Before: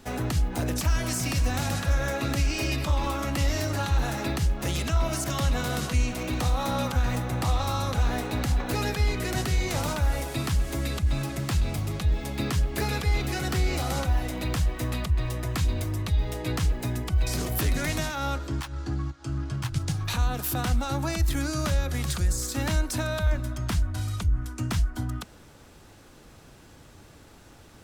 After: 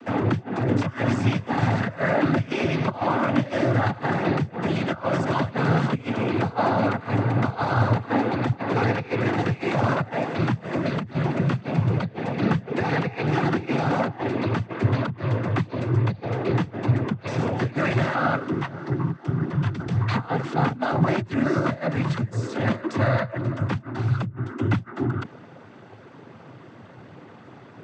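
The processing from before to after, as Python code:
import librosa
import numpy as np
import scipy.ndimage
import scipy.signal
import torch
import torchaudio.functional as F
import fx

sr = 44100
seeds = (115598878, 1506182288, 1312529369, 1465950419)

y = scipy.signal.sosfilt(scipy.signal.butter(2, 1900.0, 'lowpass', fs=sr, output='sos'), x)
y = fx.over_compress(y, sr, threshold_db=-28.0, ratio=-1.0)
y = fx.noise_vocoder(y, sr, seeds[0], bands=16)
y = y * librosa.db_to_amplitude(7.0)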